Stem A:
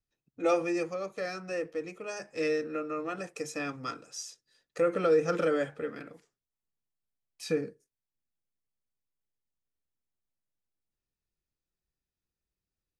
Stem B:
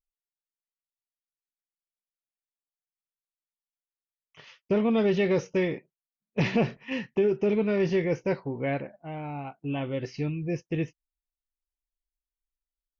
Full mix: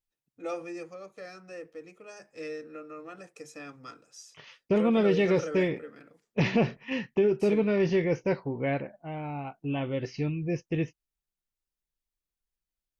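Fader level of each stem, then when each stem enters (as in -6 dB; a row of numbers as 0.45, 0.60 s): -8.5, 0.0 dB; 0.00, 0.00 s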